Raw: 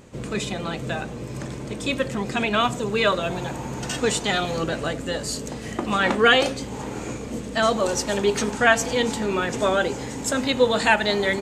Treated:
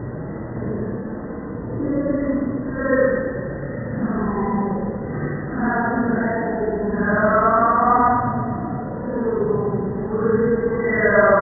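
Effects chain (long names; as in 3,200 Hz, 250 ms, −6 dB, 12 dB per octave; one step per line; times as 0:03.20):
in parallel at −3 dB: bit-depth reduction 6 bits, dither none
on the sum: extreme stretch with random phases 7.8×, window 0.05 s, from 0:01.63
linear-phase brick-wall low-pass 2,000 Hz
repeating echo 121 ms, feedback 57%, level −7 dB
level −1.5 dB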